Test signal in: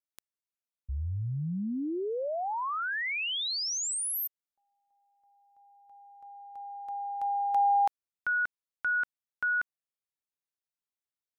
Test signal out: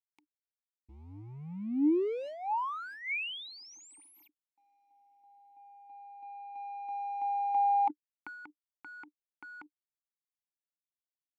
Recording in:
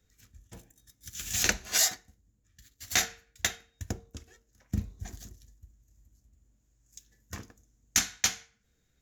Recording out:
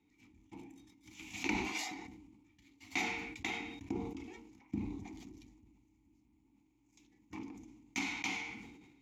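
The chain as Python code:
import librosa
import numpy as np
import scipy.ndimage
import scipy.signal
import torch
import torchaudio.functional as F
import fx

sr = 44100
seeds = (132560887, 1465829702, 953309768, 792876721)

y = fx.law_mismatch(x, sr, coded='mu')
y = fx.vowel_filter(y, sr, vowel='u')
y = fx.sustainer(y, sr, db_per_s=42.0)
y = y * 10.0 ** (7.5 / 20.0)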